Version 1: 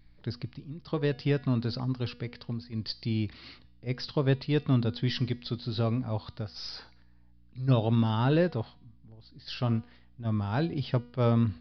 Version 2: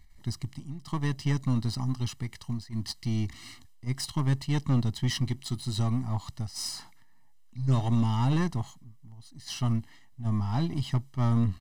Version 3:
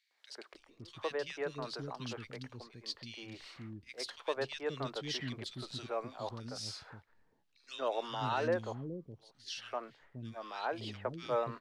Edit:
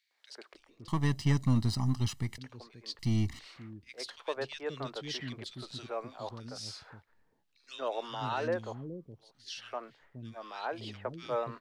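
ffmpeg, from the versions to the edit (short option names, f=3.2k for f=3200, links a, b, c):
-filter_complex "[1:a]asplit=2[a][b];[2:a]asplit=3[c][d][e];[c]atrim=end=0.882[f];[a]atrim=start=0.878:end=2.382[g];[d]atrim=start=2.378:end=2.992[h];[b]atrim=start=2.988:end=3.392[i];[e]atrim=start=3.388[j];[f][g]acrossfade=d=0.004:c1=hsin:c2=hsin[k];[k][h]acrossfade=d=0.004:c1=hsin:c2=hsin[l];[l][i]acrossfade=d=0.004:c1=hsin:c2=hsin[m];[m][j]acrossfade=d=0.004:c1=hsin:c2=hsin"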